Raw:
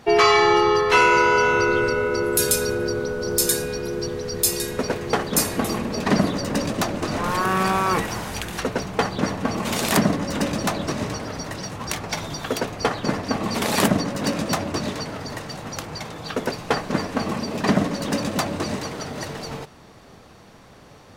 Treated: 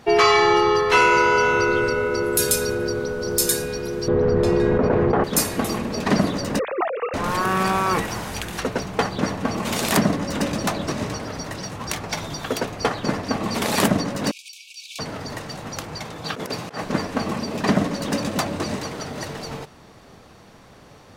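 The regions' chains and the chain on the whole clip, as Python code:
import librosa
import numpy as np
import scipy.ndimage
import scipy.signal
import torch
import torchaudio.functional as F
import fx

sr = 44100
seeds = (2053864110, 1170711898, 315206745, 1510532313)

y = fx.chain(x, sr, fx.lowpass(hz=1200.0, slope=12),
    fx.env_flatten(amount_pct=100), at=(4.08, 5.24))
y = fx.chain(y, sr, fx.sine_speech(),
    fx.hum_notches(base_hz=50, count=6), at=(6.59, 7.14))
y = fx.chain(y, sr, fx.over_compress(threshold_db=-30.0, ratio=-1.0),
    fx.brickwall_highpass(low_hz=2200.0), at=(14.31, 14.99))
y = fx.chain(y, sr, fx.highpass(hz=88.0, slope=12),
    fx.over_compress(threshold_db=-28.0, ratio=-0.5), at=(16.24, 16.84))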